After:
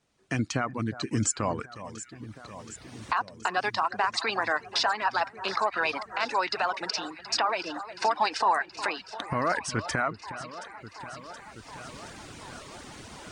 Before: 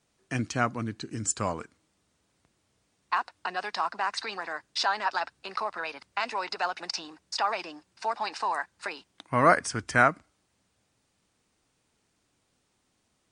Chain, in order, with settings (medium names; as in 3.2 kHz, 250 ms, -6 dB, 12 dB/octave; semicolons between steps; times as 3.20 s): recorder AGC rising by 16 dB/s; treble shelf 9.2 kHz -10.5 dB; peak limiter -14.5 dBFS, peak gain reduction 11.5 dB; on a send: echo whose repeats swap between lows and highs 362 ms, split 1.8 kHz, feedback 85%, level -12.5 dB; on the sum: reverb removal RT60 0.53 s